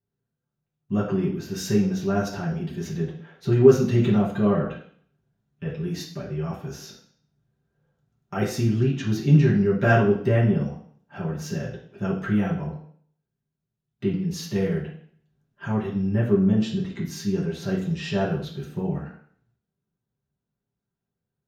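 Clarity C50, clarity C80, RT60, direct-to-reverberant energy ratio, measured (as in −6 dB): 6.0 dB, 10.5 dB, 0.55 s, −8.0 dB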